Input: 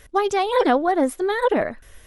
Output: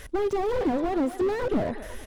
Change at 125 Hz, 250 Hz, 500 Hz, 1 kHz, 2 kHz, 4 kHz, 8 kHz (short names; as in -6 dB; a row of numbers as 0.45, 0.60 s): n/a, -3.0 dB, -5.5 dB, -10.5 dB, -11.0 dB, -12.0 dB, -9.5 dB